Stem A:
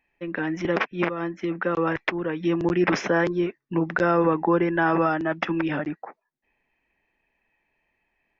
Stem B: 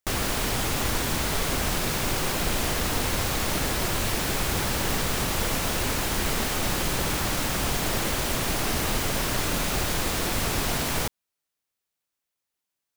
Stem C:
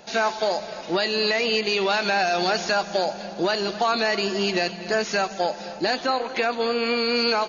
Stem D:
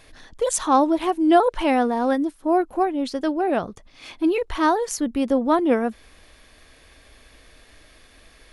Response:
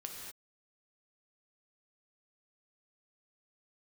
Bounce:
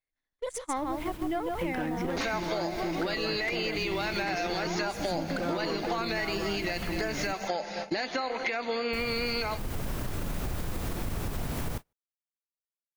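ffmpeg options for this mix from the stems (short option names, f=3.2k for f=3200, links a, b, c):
-filter_complex "[0:a]asoftclip=type=hard:threshold=-22.5dB,adelay=1400,volume=2.5dB[a];[1:a]equalizer=f=5k:t=o:w=2.8:g=-6.5,adelay=700,volume=-2.5dB,asplit=3[b][c][d];[b]atrim=end=7.33,asetpts=PTS-STARTPTS,afade=t=out:st=7.326:d=0.004:c=hsin[e];[c]atrim=start=7.33:end=8.93,asetpts=PTS-STARTPTS,volume=0[f];[d]atrim=start=8.93,asetpts=PTS-STARTPTS,afade=t=in:d=0.004:c=hsin[g];[e][f][g]concat=n=3:v=0:a=1,asplit=2[h][i];[i]volume=-16.5dB[j];[2:a]adelay=2100,volume=2.5dB[k];[3:a]aeval=exprs='if(lt(val(0),0),0.708*val(0),val(0))':c=same,volume=-9dB,asplit=3[l][m][n];[m]volume=-4dB[o];[n]apad=whole_len=602554[p];[h][p]sidechaincompress=threshold=-42dB:ratio=20:attack=36:release=457[q];[a][q]amix=inputs=2:normalize=0,lowshelf=f=230:g=9.5,alimiter=limit=-20dB:level=0:latency=1:release=198,volume=0dB[r];[k][l]amix=inputs=2:normalize=0,equalizer=f=2.1k:w=6.5:g=12,alimiter=limit=-12.5dB:level=0:latency=1:release=148,volume=0dB[s];[j][o]amix=inputs=2:normalize=0,aecho=0:1:151:1[t];[r][s][t]amix=inputs=3:normalize=0,agate=range=-35dB:threshold=-31dB:ratio=16:detection=peak,acompressor=threshold=-28dB:ratio=6"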